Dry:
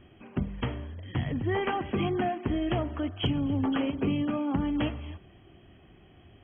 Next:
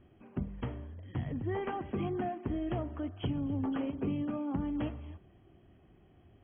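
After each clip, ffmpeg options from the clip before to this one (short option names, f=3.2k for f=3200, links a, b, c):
-af "lowpass=f=1.2k:p=1,volume=-5.5dB"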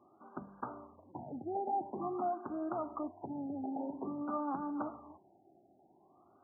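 -af "alimiter=level_in=3.5dB:limit=-24dB:level=0:latency=1:release=125,volume=-3.5dB,highpass=400,equalizer=f=470:t=q:w=4:g=-9,equalizer=f=850:t=q:w=4:g=5,equalizer=f=1.2k:t=q:w=4:g=8,equalizer=f=1.8k:t=q:w=4:g=-5,lowpass=f=2.4k:w=0.5412,lowpass=f=2.4k:w=1.3066,afftfilt=real='re*lt(b*sr/1024,830*pow(1700/830,0.5+0.5*sin(2*PI*0.49*pts/sr)))':imag='im*lt(b*sr/1024,830*pow(1700/830,0.5+0.5*sin(2*PI*0.49*pts/sr)))':win_size=1024:overlap=0.75,volume=3.5dB"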